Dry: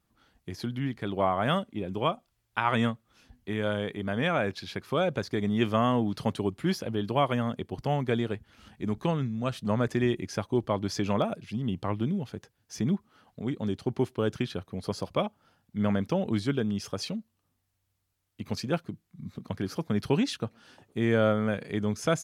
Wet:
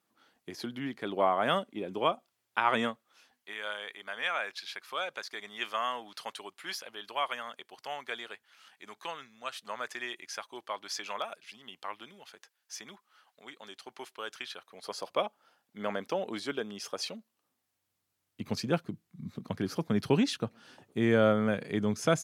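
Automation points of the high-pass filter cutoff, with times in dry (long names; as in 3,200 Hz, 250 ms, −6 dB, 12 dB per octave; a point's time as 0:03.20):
0:02.76 290 Hz
0:03.58 1,100 Hz
0:14.53 1,100 Hz
0:15.17 470 Hz
0:17.10 470 Hz
0:18.41 120 Hz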